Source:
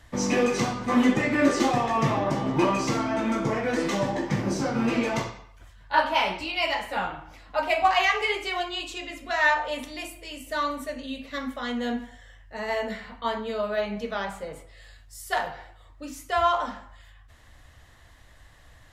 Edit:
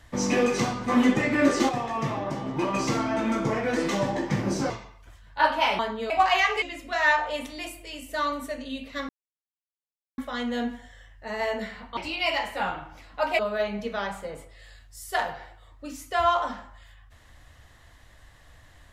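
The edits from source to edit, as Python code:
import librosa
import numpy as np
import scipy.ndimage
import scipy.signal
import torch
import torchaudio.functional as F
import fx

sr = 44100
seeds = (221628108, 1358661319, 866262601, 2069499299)

y = fx.edit(x, sr, fx.clip_gain(start_s=1.69, length_s=1.05, db=-5.0),
    fx.cut(start_s=4.7, length_s=0.54),
    fx.swap(start_s=6.33, length_s=1.42, other_s=13.26, other_length_s=0.31),
    fx.cut(start_s=8.27, length_s=0.73),
    fx.insert_silence(at_s=11.47, length_s=1.09), tone=tone)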